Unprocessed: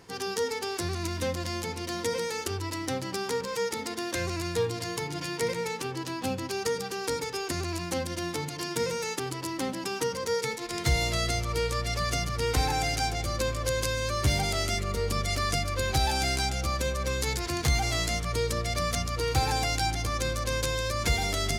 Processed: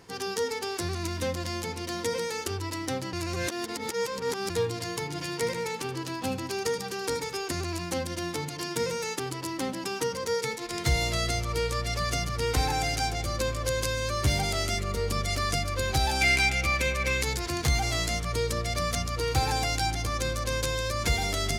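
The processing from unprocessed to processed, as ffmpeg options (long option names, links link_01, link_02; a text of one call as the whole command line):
ffmpeg -i in.wav -filter_complex "[0:a]asettb=1/sr,asplit=3[link_01][link_02][link_03];[link_01]atrim=end=5.104[link_04];[link_02]atrim=start=5.1:end=7.36,asetpts=PTS-STARTPTS,afade=type=in:duration=0.004:curve=qsin,afade=type=out:start_time=2.256:duration=0.004:curve=qsin,aecho=1:1:77:0.224,atrim=end_sample=99666[link_05];[link_03]atrim=start=7.356[link_06];[link_04][link_05]acrossfade=duration=0.004:curve1=hsin:curve2=qsin[link_07];[link_07][link_06]acrossfade=duration=0.004:curve1=qsin:curve2=hsin,asettb=1/sr,asplit=3[link_08][link_09][link_10];[link_08]atrim=end=16.214[link_11];[link_09]atrim=start=16.21:end=17.23,asetpts=PTS-STARTPTS,afade=type=in:duration=0.004:curve=qsin,afade=type=out:start_time=1.016:duration=0.004:curve=qsin,equalizer=frequency=2300:width_type=o:width=0.58:gain=15[link_12];[link_10]atrim=start=17.226[link_13];[link_11][link_12]acrossfade=duration=0.004:curve1=hsin:curve2=qsin[link_14];[link_14][link_13]acrossfade=duration=0.004:curve1=qsin:curve2=hsin,asplit=3[link_15][link_16][link_17];[link_15]atrim=end=3.132[link_18];[link_16]atrim=start=3.128:end=4.502,asetpts=PTS-STARTPTS,areverse[link_19];[link_17]atrim=start=4.498[link_20];[link_18][link_19]acrossfade=duration=0.004:curve1=hsin:curve2=hsin[link_21];[link_21][link_20]acrossfade=duration=0.004:curve1=hsin:curve2=hsin" out.wav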